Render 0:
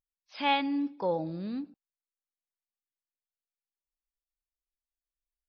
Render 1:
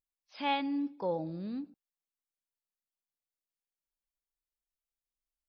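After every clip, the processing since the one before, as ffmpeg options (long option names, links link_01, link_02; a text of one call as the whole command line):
ffmpeg -i in.wav -af "equalizer=frequency=2300:width_type=o:width=3:gain=-3.5,volume=-2.5dB" out.wav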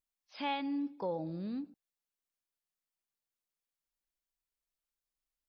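ffmpeg -i in.wav -af "acompressor=threshold=-34dB:ratio=2" out.wav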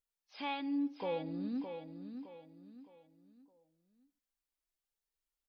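ffmpeg -i in.wav -filter_complex "[0:a]flanger=delay=2.1:depth=2:regen=58:speed=0.38:shape=sinusoidal,asplit=2[link_01][link_02];[link_02]aecho=0:1:614|1228|1842|2456:0.398|0.143|0.0516|0.0186[link_03];[link_01][link_03]amix=inputs=2:normalize=0,volume=2dB" out.wav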